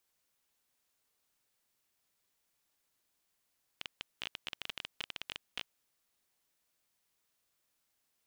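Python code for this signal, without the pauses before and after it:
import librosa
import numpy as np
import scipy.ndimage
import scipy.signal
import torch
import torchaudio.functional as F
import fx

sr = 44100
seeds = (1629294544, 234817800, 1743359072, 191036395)

y = fx.geiger_clicks(sr, seeds[0], length_s=1.94, per_s=16.0, level_db=-21.0)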